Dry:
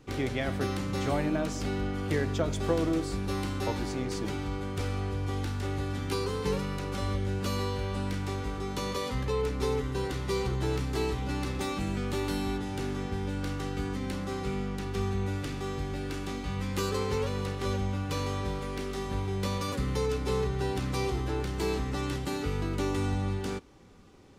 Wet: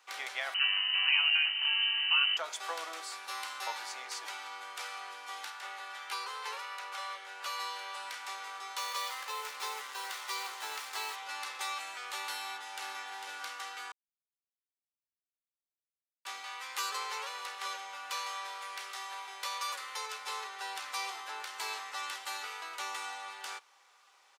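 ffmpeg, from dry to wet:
ffmpeg -i in.wav -filter_complex "[0:a]asettb=1/sr,asplit=3[link_01][link_02][link_03];[link_01]atrim=end=0.544[link_04];[link_02]atrim=start=0.54:end=2.37,asetpts=PTS-STARTPTS,afade=type=in:duration=0.004:curve=qsin,afade=type=out:start_time=1.826:duration=0.004:curve=qsin,lowpass=frequency=2600:width_type=q:width=0.5098,lowpass=frequency=2600:width_type=q:width=0.6013,lowpass=frequency=2600:width_type=q:width=0.9,lowpass=frequency=2600:width_type=q:width=2.563,afreqshift=-3100[link_05];[link_03]atrim=start=2.366[link_06];[link_04][link_05]acrossfade=duration=0.004:curve1=hsin:curve2=qsin[link_07];[link_07][link_06]acrossfade=duration=0.004:curve1=qsin:curve2=hsin,asettb=1/sr,asplit=3[link_08][link_09][link_10];[link_08]atrim=end=5.504[link_11];[link_09]atrim=start=5.5:end=7.6,asetpts=PTS-STARTPTS,afade=type=in:duration=0.004:curve=qsin,afade=type=out:start_time=2.096:duration=0.004:curve=qsin,bass=frequency=250:gain=-11,treble=frequency=4000:gain=-5[link_12];[link_10]atrim=start=7.596[link_13];[link_11][link_12]acrossfade=duration=0.004:curve1=hsin:curve2=qsin[link_14];[link_14][link_13]acrossfade=duration=0.004:curve1=qsin:curve2=hsin,asettb=1/sr,asplit=3[link_15][link_16][link_17];[link_15]atrim=end=8.784[link_18];[link_16]atrim=start=8.78:end=11.16,asetpts=PTS-STARTPTS,afade=type=in:duration=0.004:curve=qsin,afade=type=out:start_time=2.376:duration=0.004:curve=qsin,acrusher=bits=6:mix=0:aa=0.5[link_19];[link_17]atrim=start=11.156[link_20];[link_18][link_19]acrossfade=duration=0.004:curve1=hsin:curve2=qsin[link_21];[link_21][link_20]acrossfade=duration=0.004:curve1=qsin:curve2=hsin,asplit=2[link_22][link_23];[link_23]afade=type=in:start_time=12.36:duration=0.01,afade=type=out:start_time=13.03:duration=0.01,aecho=0:1:450|900|1350:0.501187|0.125297|0.0313242[link_24];[link_22][link_24]amix=inputs=2:normalize=0,asettb=1/sr,asplit=3[link_25][link_26][link_27];[link_25]atrim=end=18.194[link_28];[link_26]atrim=start=18.19:end=20.45,asetpts=PTS-STARTPTS,afade=type=in:duration=0.004:curve=qsin,afade=type=out:start_time=2.256:duration=0.004:curve=qsin,highpass=frequency=290:poles=1[link_29];[link_27]atrim=start=20.446[link_30];[link_28][link_29]acrossfade=duration=0.004:curve1=hsin:curve2=qsin[link_31];[link_31][link_30]acrossfade=duration=0.004:curve1=qsin:curve2=hsin,asplit=3[link_32][link_33][link_34];[link_32]atrim=end=13.92,asetpts=PTS-STARTPTS,afade=type=out:start_time=13.916:duration=0.004:curve=hsin[link_35];[link_33]atrim=start=13.92:end=16.25,asetpts=PTS-STARTPTS,volume=0[link_36];[link_34]atrim=start=16.25,asetpts=PTS-STARTPTS,afade=type=in:duration=0.004:curve=hsin[link_37];[link_35][link_36][link_37]concat=n=3:v=0:a=1,highpass=frequency=840:width=0.5412,highpass=frequency=840:width=1.3066,volume=1dB" out.wav

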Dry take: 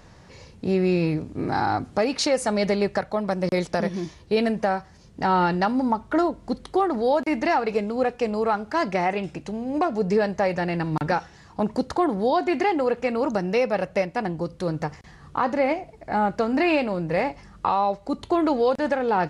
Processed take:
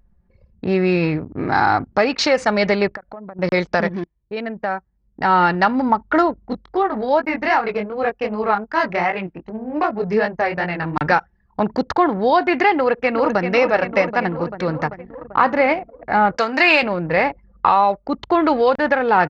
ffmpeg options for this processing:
ffmpeg -i in.wav -filter_complex "[0:a]asettb=1/sr,asplit=3[link_01][link_02][link_03];[link_01]atrim=end=2.884[link_04];[link_02]atrim=start=2.88:end=3.39,asetpts=PTS-STARTPTS,afade=type=in:duration=0.004:curve=qsin,afade=type=out:start_time=0.506:duration=0.004:curve=qsin,acompressor=threshold=-34dB:ratio=16:attack=3.2:release=140:knee=1:detection=peak[link_05];[link_03]atrim=start=3.386[link_06];[link_04][link_05]acrossfade=duration=0.004:curve1=hsin:curve2=qsin[link_07];[link_07][link_06]acrossfade=duration=0.004:curve1=qsin:curve2=hsin,asettb=1/sr,asplit=3[link_08][link_09][link_10];[link_08]atrim=end=6.464[link_11];[link_09]atrim=start=6.46:end=10.97,asetpts=PTS-STARTPTS,afade=type=in:duration=0.004:curve=qsin,afade=type=out:start_time=4.506:duration=0.004:curve=qsin,flanger=delay=18:depth=6.3:speed=2.6[link_12];[link_10]atrim=start=10.966[link_13];[link_11][link_12]acrossfade=duration=0.004:curve1=hsin:curve2=qsin[link_14];[link_14][link_13]acrossfade=duration=0.004:curve1=qsin:curve2=hsin,asplit=2[link_15][link_16];[link_16]afade=type=in:start_time=12.75:duration=0.01,afade=type=out:start_time=13.52:duration=0.01,aecho=0:1:390|780|1170|1560|1950|2340|2730|3120|3510|3900|4290|4680:0.421697|0.316272|0.237204|0.177903|0.133427|0.100071|0.0750529|0.0562897|0.0422173|0.0316629|0.0237472|0.0178104[link_17];[link_15][link_17]amix=inputs=2:normalize=0,asettb=1/sr,asplit=3[link_18][link_19][link_20];[link_18]atrim=end=16.374[link_21];[link_19]atrim=start=16.37:end=16.83,asetpts=PTS-STARTPTS,afade=type=in:duration=0.004:curve=qsin,afade=type=out:start_time=0.456:duration=0.004:curve=qsin,aemphasis=mode=production:type=riaa[link_22];[link_20]atrim=start=16.826[link_23];[link_21][link_22]acrossfade=duration=0.004:curve1=hsin:curve2=qsin[link_24];[link_24][link_23]acrossfade=duration=0.004:curve1=qsin:curve2=hsin,asplit=2[link_25][link_26];[link_25]atrim=end=4.04,asetpts=PTS-STARTPTS,afade=type=out:start_time=4.036:duration=0.004:curve=hsin:silence=0.16788[link_27];[link_26]atrim=start=4.04,asetpts=PTS-STARTPTS,afade=type=in:duration=1.77:silence=0.16788[link_28];[link_27][link_28]concat=n=2:v=0:a=1,anlmdn=3.98,lowpass=frequency=6000:width=0.5412,lowpass=frequency=6000:width=1.3066,equalizer=frequency=1700:width_type=o:width=2:gain=8.5,volume=3dB" out.wav

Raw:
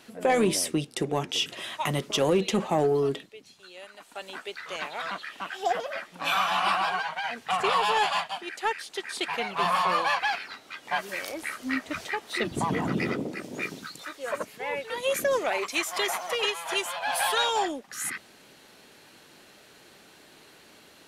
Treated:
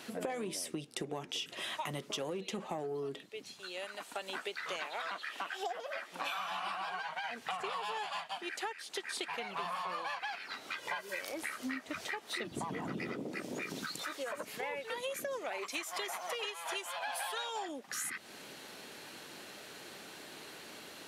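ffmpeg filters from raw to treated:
ffmpeg -i in.wav -filter_complex "[0:a]asettb=1/sr,asplit=3[link_01][link_02][link_03];[link_01]atrim=end=4.794[link_04];[link_02]atrim=start=4.79:end=6.39,asetpts=PTS-STARTPTS,afade=type=in:duration=0.004:curve=qsin,afade=type=out:start_time=1.596:duration=0.004:curve=qsin,highpass=280[link_05];[link_03]atrim=start=6.386[link_06];[link_04][link_05]acrossfade=duration=0.004:curve1=hsin:curve2=qsin[link_07];[link_07][link_06]acrossfade=duration=0.004:curve1=qsin:curve2=hsin,asettb=1/sr,asplit=3[link_08][link_09][link_10];[link_08]atrim=end=10.784[link_11];[link_09]atrim=start=10.78:end=11.21,asetpts=PTS-STARTPTS,afade=type=in:duration=0.004:curve=qsin,afade=type=out:start_time=0.426:duration=0.004:curve=qsin,aecho=1:1:2:0.65,atrim=end_sample=18963[link_12];[link_10]atrim=start=11.206[link_13];[link_11][link_12]acrossfade=duration=0.004:curve1=hsin:curve2=qsin[link_14];[link_14][link_13]acrossfade=duration=0.004:curve1=qsin:curve2=hsin,asettb=1/sr,asplit=3[link_15][link_16][link_17];[link_15]atrim=end=13.484[link_18];[link_16]atrim=start=13.48:end=14.63,asetpts=PTS-STARTPTS,afade=type=in:duration=0.004:curve=qsin,afade=type=out:start_time=1.146:duration=0.004:curve=qsin,acompressor=threshold=-35dB:ratio=6:attack=3.2:release=140:knee=1:detection=peak[link_19];[link_17]atrim=start=14.626[link_20];[link_18][link_19]acrossfade=duration=0.004:curve1=hsin:curve2=qsin[link_21];[link_21][link_20]acrossfade=duration=0.004:curve1=qsin:curve2=hsin,asettb=1/sr,asplit=3[link_22][link_23][link_24];[link_22]atrim=end=16.284[link_25];[link_23]atrim=start=16.28:end=17.69,asetpts=PTS-STARTPTS,afade=type=in:duration=0.004:curve=qsin,afade=type=out:start_time=1.406:duration=0.004:curve=qsin,lowshelf=frequency=130:gain=-10.5[link_26];[link_24]atrim=start=17.686[link_27];[link_25][link_26]acrossfade=duration=0.004:curve1=hsin:curve2=qsin[link_28];[link_28][link_27]acrossfade=duration=0.004:curve1=qsin:curve2=hsin,highpass=frequency=140:poles=1,acompressor=threshold=-40dB:ratio=12,volume=4dB" out.wav

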